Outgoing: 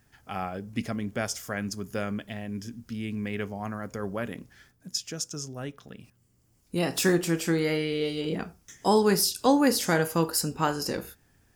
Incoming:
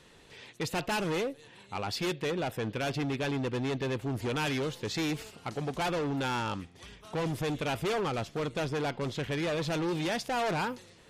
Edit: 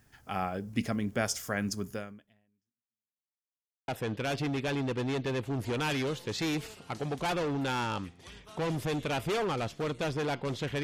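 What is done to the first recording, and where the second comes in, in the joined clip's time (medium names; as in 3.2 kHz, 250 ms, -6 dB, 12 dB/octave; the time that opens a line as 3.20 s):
outgoing
1.88–3.39 s: fade out exponential
3.39–3.88 s: mute
3.88 s: go over to incoming from 2.44 s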